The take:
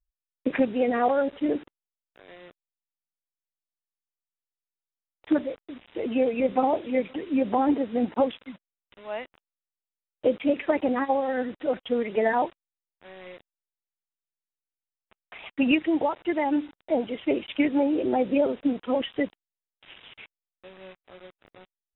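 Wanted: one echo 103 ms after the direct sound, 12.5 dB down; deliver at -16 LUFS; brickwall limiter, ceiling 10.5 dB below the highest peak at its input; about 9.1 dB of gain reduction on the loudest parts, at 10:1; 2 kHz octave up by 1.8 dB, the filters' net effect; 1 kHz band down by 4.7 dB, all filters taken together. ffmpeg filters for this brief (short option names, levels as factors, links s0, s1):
-af "equalizer=f=1000:t=o:g=-7.5,equalizer=f=2000:t=o:g=4,acompressor=threshold=0.0447:ratio=10,alimiter=level_in=1.5:limit=0.0631:level=0:latency=1,volume=0.668,aecho=1:1:103:0.237,volume=11.2"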